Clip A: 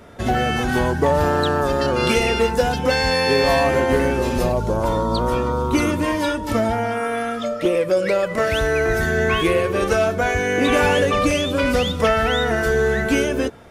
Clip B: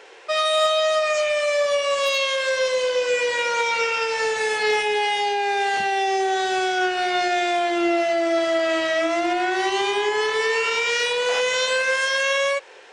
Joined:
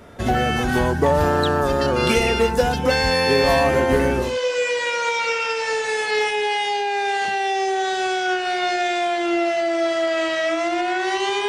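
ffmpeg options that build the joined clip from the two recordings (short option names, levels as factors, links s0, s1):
-filter_complex "[0:a]apad=whole_dur=11.48,atrim=end=11.48,atrim=end=4.38,asetpts=PTS-STARTPTS[s0];[1:a]atrim=start=2.7:end=10,asetpts=PTS-STARTPTS[s1];[s0][s1]acrossfade=d=0.2:c1=tri:c2=tri"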